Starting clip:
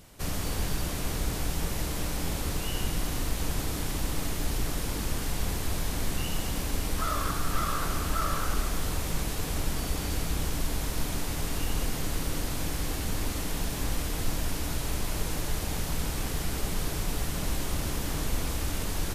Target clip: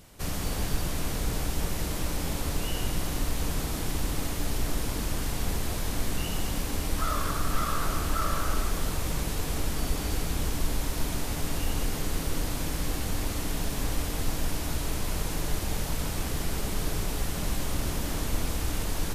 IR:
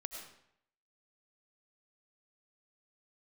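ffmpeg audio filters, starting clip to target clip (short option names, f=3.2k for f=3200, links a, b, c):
-filter_complex "[0:a]asplit=2[a][b];[1:a]atrim=start_sample=2205,lowpass=f=1.2k:w=0.5412,lowpass=f=1.2k:w=1.3066,adelay=149[c];[b][c]afir=irnorm=-1:irlink=0,volume=-4.5dB[d];[a][d]amix=inputs=2:normalize=0"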